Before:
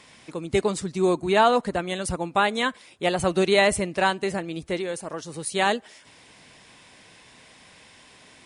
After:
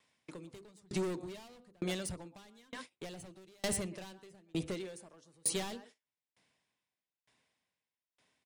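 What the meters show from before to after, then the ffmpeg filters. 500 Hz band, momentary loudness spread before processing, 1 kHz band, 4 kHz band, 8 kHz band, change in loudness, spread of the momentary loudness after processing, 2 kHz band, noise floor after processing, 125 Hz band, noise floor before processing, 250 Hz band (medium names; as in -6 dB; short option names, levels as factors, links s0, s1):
-19.0 dB, 12 LU, -26.0 dB, -15.5 dB, -6.0 dB, -15.5 dB, 18 LU, -22.0 dB, under -85 dBFS, -12.0 dB, -52 dBFS, -14.0 dB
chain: -filter_complex "[0:a]highpass=59,bandreject=f=50:t=h:w=6,bandreject=f=100:t=h:w=6,bandreject=f=150:t=h:w=6,bandreject=f=200:t=h:w=6,bandreject=f=250:t=h:w=6,bandreject=f=300:t=h:w=6,bandreject=f=350:t=h:w=6,bandreject=f=400:t=h:w=6,bandreject=f=450:t=h:w=6,bandreject=f=500:t=h:w=6,asplit=2[s0][s1];[s1]acompressor=threshold=0.0141:ratio=5,volume=1.33[s2];[s0][s2]amix=inputs=2:normalize=0,asplit=2[s3][s4];[s4]adelay=120,highpass=300,lowpass=3400,asoftclip=type=hard:threshold=0.178,volume=0.178[s5];[s3][s5]amix=inputs=2:normalize=0,volume=14.1,asoftclip=hard,volume=0.0708,agate=range=0.0501:threshold=0.0112:ratio=16:detection=peak,acrossover=split=370|3000[s6][s7][s8];[s7]acompressor=threshold=0.02:ratio=6[s9];[s6][s9][s8]amix=inputs=3:normalize=0,aeval=exprs='val(0)*pow(10,-35*if(lt(mod(1.1*n/s,1),2*abs(1.1)/1000),1-mod(1.1*n/s,1)/(2*abs(1.1)/1000),(mod(1.1*n/s,1)-2*abs(1.1)/1000)/(1-2*abs(1.1)/1000))/20)':c=same,volume=0.794"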